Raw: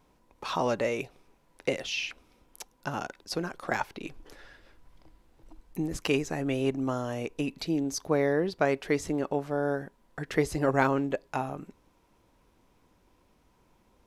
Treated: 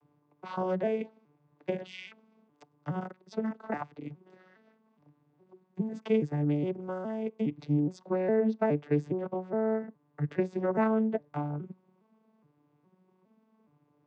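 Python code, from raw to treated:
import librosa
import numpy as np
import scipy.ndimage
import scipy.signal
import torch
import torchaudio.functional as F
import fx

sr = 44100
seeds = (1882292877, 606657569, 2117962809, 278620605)

y = fx.vocoder_arp(x, sr, chord='major triad', root=50, every_ms=414)
y = fx.high_shelf(y, sr, hz=4200.0, db=-11.5)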